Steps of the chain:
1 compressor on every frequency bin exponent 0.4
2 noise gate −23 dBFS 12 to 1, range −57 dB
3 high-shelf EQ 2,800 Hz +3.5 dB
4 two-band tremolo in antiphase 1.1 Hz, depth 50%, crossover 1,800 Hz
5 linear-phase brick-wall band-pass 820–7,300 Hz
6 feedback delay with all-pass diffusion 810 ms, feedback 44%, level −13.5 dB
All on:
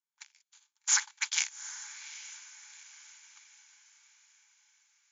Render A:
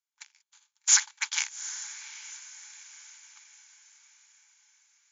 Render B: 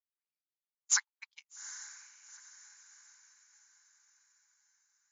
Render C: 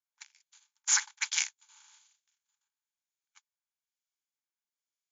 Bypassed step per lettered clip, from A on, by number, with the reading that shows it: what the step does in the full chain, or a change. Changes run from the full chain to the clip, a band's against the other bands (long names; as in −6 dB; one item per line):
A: 4, change in integrated loudness +5.0 LU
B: 1, change in integrated loudness −2.0 LU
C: 6, echo-to-direct ratio −12.5 dB to none audible